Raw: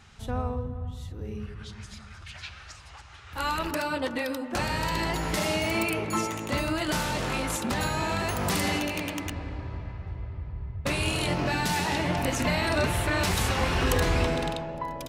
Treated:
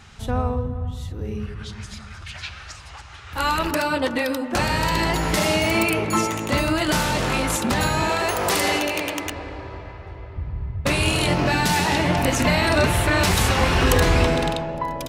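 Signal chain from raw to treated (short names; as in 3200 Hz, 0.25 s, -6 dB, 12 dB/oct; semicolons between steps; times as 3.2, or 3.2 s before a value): 8.09–10.36 resonant low shelf 290 Hz -8.5 dB, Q 1.5; gain +7 dB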